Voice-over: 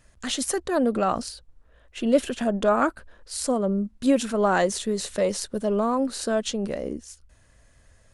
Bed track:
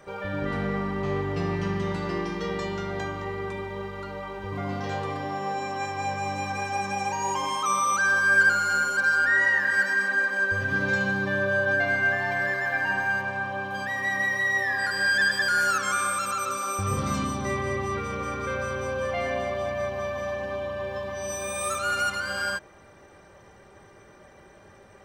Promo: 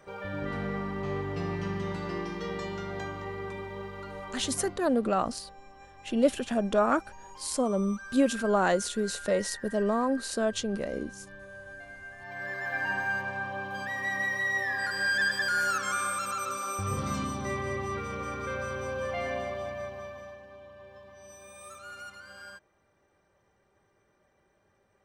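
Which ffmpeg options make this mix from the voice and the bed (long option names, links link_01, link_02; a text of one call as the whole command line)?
ffmpeg -i stem1.wav -i stem2.wav -filter_complex "[0:a]adelay=4100,volume=-3.5dB[link_01];[1:a]volume=12.5dB,afade=type=out:start_time=4.31:duration=0.53:silence=0.141254,afade=type=in:start_time=12.17:duration=0.67:silence=0.133352,afade=type=out:start_time=19.32:duration=1.11:silence=0.211349[link_02];[link_01][link_02]amix=inputs=2:normalize=0" out.wav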